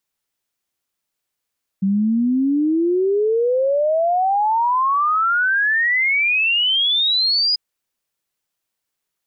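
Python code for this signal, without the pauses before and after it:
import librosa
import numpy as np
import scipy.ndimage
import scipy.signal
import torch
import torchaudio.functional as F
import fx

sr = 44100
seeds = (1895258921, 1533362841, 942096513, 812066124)

y = fx.ess(sr, length_s=5.74, from_hz=190.0, to_hz=5000.0, level_db=-14.5)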